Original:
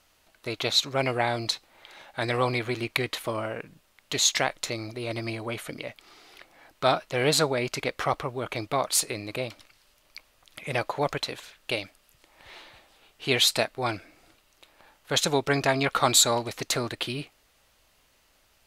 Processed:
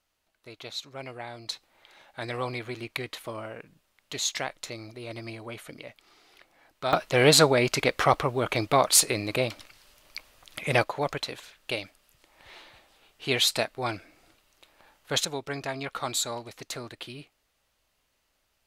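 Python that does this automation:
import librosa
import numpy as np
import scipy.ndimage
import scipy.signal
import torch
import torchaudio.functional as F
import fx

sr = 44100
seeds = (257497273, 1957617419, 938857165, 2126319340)

y = fx.gain(x, sr, db=fx.steps((0.0, -13.5), (1.49, -6.5), (6.93, 5.0), (10.84, -2.0), (15.25, -9.5)))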